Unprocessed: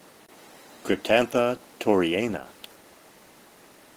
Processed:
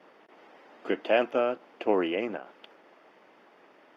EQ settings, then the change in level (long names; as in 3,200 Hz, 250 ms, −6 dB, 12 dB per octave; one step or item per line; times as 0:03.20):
high-pass filter 320 Hz 12 dB per octave
high-frequency loss of the air 310 metres
notch filter 4,000 Hz, Q 6.2
−1.5 dB